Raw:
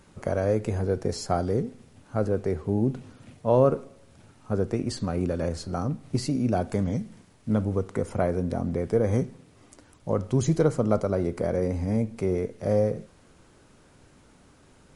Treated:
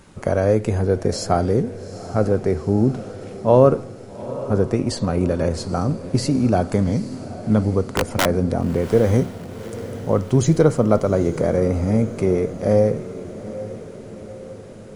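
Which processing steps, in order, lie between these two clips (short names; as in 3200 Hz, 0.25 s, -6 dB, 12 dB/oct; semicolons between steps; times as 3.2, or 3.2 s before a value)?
7.86–8.26 wrapped overs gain 17.5 dB; diffused feedback echo 0.831 s, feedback 58%, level -14.5 dB; gain +7 dB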